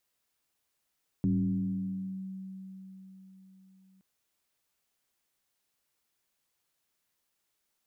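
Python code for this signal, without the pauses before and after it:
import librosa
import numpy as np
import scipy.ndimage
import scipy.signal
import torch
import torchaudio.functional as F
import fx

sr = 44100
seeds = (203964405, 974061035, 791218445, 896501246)

y = fx.fm2(sr, length_s=2.77, level_db=-23.0, carrier_hz=190.0, ratio=0.45, index=0.9, index_s=1.03, decay_s=4.47, shape='linear')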